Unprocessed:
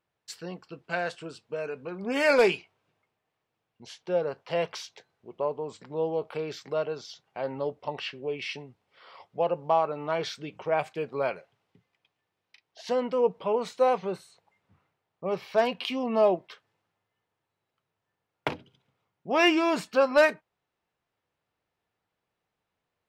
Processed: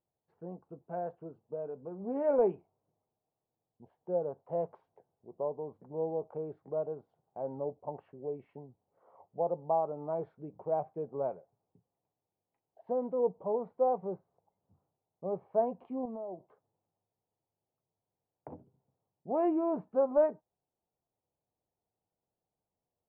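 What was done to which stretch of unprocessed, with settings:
0:16.05–0:18.53: downward compressor, threshold −33 dBFS
whole clip: Chebyshev low-pass filter 800 Hz, order 3; level −4.5 dB

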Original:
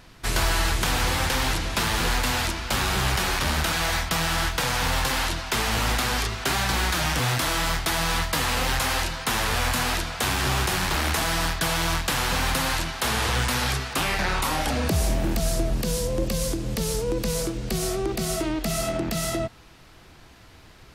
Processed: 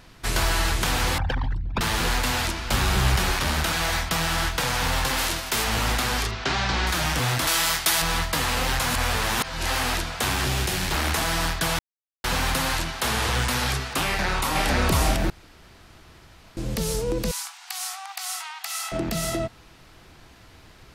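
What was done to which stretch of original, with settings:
0:01.18–0:01.81: spectral envelope exaggerated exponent 3
0:02.67–0:03.32: low-shelf EQ 160 Hz +6.5 dB
0:05.17–0:05.63: spectral envelope flattened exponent 0.6
0:06.31–0:06.87: low-pass filter 5,900 Hz 24 dB per octave
0:07.47–0:08.02: spectral tilt +2.5 dB per octave
0:08.86–0:09.83: reverse
0:10.45–0:10.92: parametric band 1,100 Hz −7 dB 1.1 octaves
0:11.79–0:12.24: silence
0:14.05–0:14.66: delay throw 500 ms, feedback 40%, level −0.5 dB
0:15.30–0:16.57: fill with room tone
0:17.31–0:18.92: linear-phase brick-wall high-pass 700 Hz

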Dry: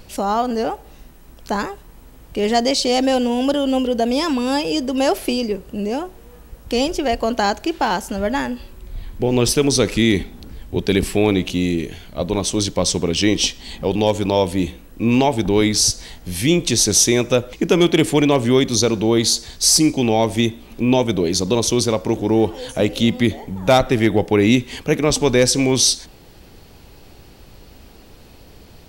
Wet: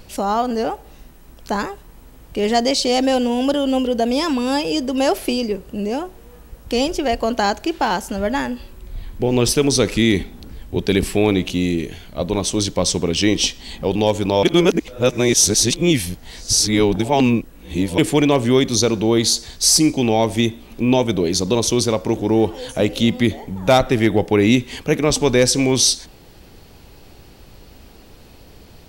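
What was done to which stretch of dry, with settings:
0:14.43–0:17.98: reverse

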